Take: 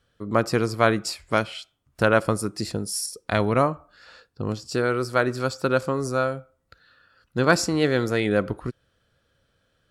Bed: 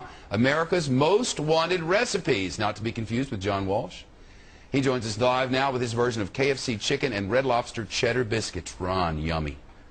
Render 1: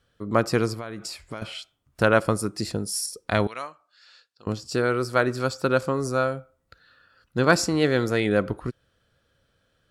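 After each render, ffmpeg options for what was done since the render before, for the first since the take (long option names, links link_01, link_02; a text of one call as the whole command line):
ffmpeg -i in.wav -filter_complex "[0:a]asettb=1/sr,asplit=3[link_01][link_02][link_03];[link_01]atrim=end=0.734[link_04];[link_02]atrim=start=0.73:end=1.42,asetpts=PTS-STARTPTS,afade=type=in:duration=0.004:curve=qsin,afade=type=out:start_time=0.686:duration=0.004:curve=qsin,acompressor=threshold=-30dB:ratio=10:attack=3.2:release=140:knee=1:detection=peak[link_05];[link_03]atrim=start=1.416[link_06];[link_04][link_05]acrossfade=duration=0.004:curve1=hsin:curve2=qsin[link_07];[link_07][link_06]acrossfade=duration=0.004:curve1=qsin:curve2=hsin,asettb=1/sr,asplit=3[link_08][link_09][link_10];[link_08]atrim=end=3.474[link_11];[link_09]atrim=start=3.47:end=4.47,asetpts=PTS-STARTPTS,afade=type=in:duration=0.004:curve=qsin,afade=type=out:start_time=0.996:duration=0.004:curve=qsin,bandpass=frequency=4700:width_type=q:width=0.86[link_12];[link_10]atrim=start=4.466[link_13];[link_11][link_12]acrossfade=duration=0.004:curve1=hsin:curve2=qsin[link_14];[link_14][link_13]acrossfade=duration=0.004:curve1=qsin:curve2=hsin" out.wav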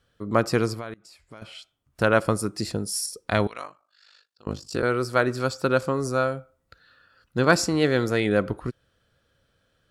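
ffmpeg -i in.wav -filter_complex "[0:a]asettb=1/sr,asplit=3[link_01][link_02][link_03];[link_01]atrim=end=3.484[link_04];[link_02]atrim=start=3.48:end=4.83,asetpts=PTS-STARTPTS,afade=type=in:duration=0.004:curve=qsin,afade=type=out:start_time=1.346:duration=0.004:curve=qsin,aeval=exprs='val(0)*sin(2*PI*25*n/s)':channel_layout=same[link_05];[link_03]atrim=start=4.826[link_06];[link_04][link_05]acrossfade=duration=0.004:curve1=hsin:curve2=qsin[link_07];[link_07][link_06]acrossfade=duration=0.004:curve1=qsin:curve2=hsin,asplit=2[link_08][link_09];[link_08]atrim=end=0.94,asetpts=PTS-STARTPTS,afade=type=out:start_time=0.936:duration=0.004:curve=hsin:silence=0.0668344[link_10];[link_09]atrim=start=0.94,asetpts=PTS-STARTPTS,afade=type=in:duration=1.32:silence=0.0668344[link_11];[link_10][link_11]concat=n=2:v=0:a=1" out.wav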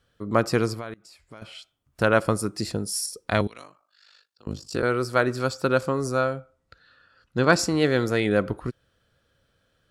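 ffmpeg -i in.wav -filter_complex "[0:a]asettb=1/sr,asplit=3[link_01][link_02][link_03];[link_01]atrim=end=3.414[link_04];[link_02]atrim=start=3.41:end=4.6,asetpts=PTS-STARTPTS,afade=type=in:duration=0.004:curve=qsin,afade=type=out:start_time=1.186:duration=0.004:curve=qsin,acrossover=split=400|3000[link_05][link_06][link_07];[link_06]acompressor=threshold=-51dB:ratio=2:attack=3.2:release=140:knee=2.83:detection=peak[link_08];[link_05][link_08][link_07]amix=inputs=3:normalize=0[link_09];[link_03]atrim=start=4.596[link_10];[link_04][link_09]acrossfade=duration=0.004:curve1=hsin:curve2=qsin[link_11];[link_11][link_10]acrossfade=duration=0.004:curve1=qsin:curve2=hsin,asettb=1/sr,asplit=3[link_12][link_13][link_14];[link_12]atrim=end=6.214[link_15];[link_13]atrim=start=6.21:end=7.59,asetpts=PTS-STARTPTS,afade=type=in:duration=0.004:curve=qsin,afade=type=out:start_time=1.376:duration=0.004:curve=qsin,lowpass=8200[link_16];[link_14]atrim=start=7.586[link_17];[link_15][link_16]acrossfade=duration=0.004:curve1=hsin:curve2=qsin[link_18];[link_18][link_17]acrossfade=duration=0.004:curve1=qsin:curve2=hsin" out.wav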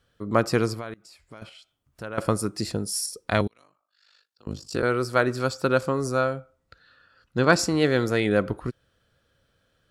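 ffmpeg -i in.wav -filter_complex "[0:a]asettb=1/sr,asplit=3[link_01][link_02][link_03];[link_01]atrim=end=1.494[link_04];[link_02]atrim=start=1.49:end=2.18,asetpts=PTS-STARTPTS,afade=type=in:duration=0.004:curve=qsin,afade=type=out:start_time=0.686:duration=0.004:curve=qsin,acompressor=threshold=-58dB:ratio=1.5:attack=3.2:release=140:knee=1:detection=peak[link_05];[link_03]atrim=start=2.176[link_06];[link_04][link_05]acrossfade=duration=0.004:curve1=hsin:curve2=qsin[link_07];[link_07][link_06]acrossfade=duration=0.004:curve1=qsin:curve2=hsin,asplit=2[link_08][link_09];[link_08]atrim=end=3.48,asetpts=PTS-STARTPTS,afade=type=out:start_time=3.476:duration=0.004:curve=hsin:silence=0.0944061[link_10];[link_09]atrim=start=3.48,asetpts=PTS-STARTPTS,afade=type=in:duration=1.17:silence=0.0944061[link_11];[link_10][link_11]concat=n=2:v=0:a=1" out.wav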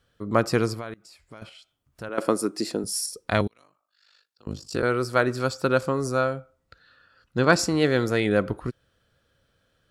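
ffmpeg -i in.wav -filter_complex "[0:a]asettb=1/sr,asplit=3[link_01][link_02][link_03];[link_01]atrim=end=2.094[link_04];[link_02]atrim=start=2.09:end=2.84,asetpts=PTS-STARTPTS,afade=type=in:duration=0.004:curve=qsin,afade=type=out:start_time=0.746:duration=0.004:curve=qsin,highpass=frequency=290:width_type=q:width=1.6[link_05];[link_03]atrim=start=2.836[link_06];[link_04][link_05]acrossfade=duration=0.004:curve1=hsin:curve2=qsin[link_07];[link_07][link_06]acrossfade=duration=0.004:curve1=qsin:curve2=hsin" out.wav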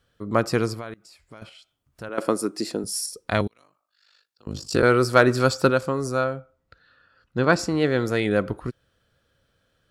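ffmpeg -i in.wav -filter_complex "[0:a]asplit=3[link_01][link_02][link_03];[link_01]afade=type=out:start_time=4.54:duration=0.02[link_04];[link_02]acontrast=65,afade=type=in:start_time=4.54:duration=0.02,afade=type=out:start_time=5.69:duration=0.02[link_05];[link_03]afade=type=in:start_time=5.69:duration=0.02[link_06];[link_04][link_05][link_06]amix=inputs=3:normalize=0,asettb=1/sr,asplit=3[link_07][link_08][link_09];[link_07]atrim=end=6.244[link_10];[link_08]atrim=start=6.24:end=8.05,asetpts=PTS-STARTPTS,afade=type=in:duration=0.004:curve=qsin,afade=type=out:start_time=1.806:duration=0.004:curve=qsin,highshelf=frequency=4300:gain=-7.5[link_11];[link_09]atrim=start=8.046[link_12];[link_10][link_11]acrossfade=duration=0.004:curve1=hsin:curve2=qsin[link_13];[link_13][link_12]acrossfade=duration=0.004:curve1=qsin:curve2=hsin" out.wav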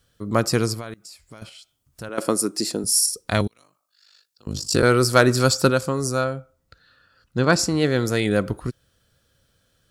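ffmpeg -i in.wav -af "bass=frequency=250:gain=4,treble=frequency=4000:gain=11" out.wav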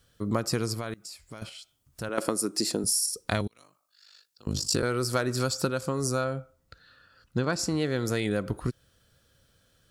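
ffmpeg -i in.wav -af "acompressor=threshold=-23dB:ratio=10" out.wav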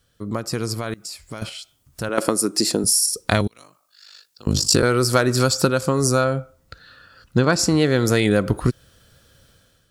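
ffmpeg -i in.wav -af "dynaudnorm=framelen=500:gausssize=3:maxgain=11.5dB" out.wav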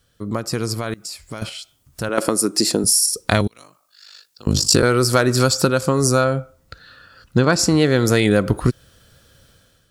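ffmpeg -i in.wav -af "volume=2dB,alimiter=limit=-2dB:level=0:latency=1" out.wav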